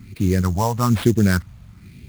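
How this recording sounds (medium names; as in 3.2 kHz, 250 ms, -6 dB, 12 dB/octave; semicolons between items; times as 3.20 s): phasing stages 4, 1.1 Hz, lowest notch 340–1200 Hz; aliases and images of a low sample rate 6.7 kHz, jitter 20%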